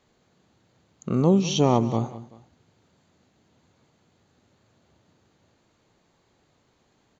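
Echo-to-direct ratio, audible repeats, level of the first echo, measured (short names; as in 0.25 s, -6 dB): -15.5 dB, 2, -16.5 dB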